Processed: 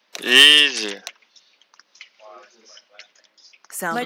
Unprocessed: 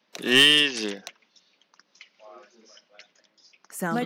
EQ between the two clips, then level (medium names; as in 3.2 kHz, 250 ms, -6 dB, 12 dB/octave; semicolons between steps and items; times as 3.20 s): high-pass 690 Hz 6 dB/octave; +7.0 dB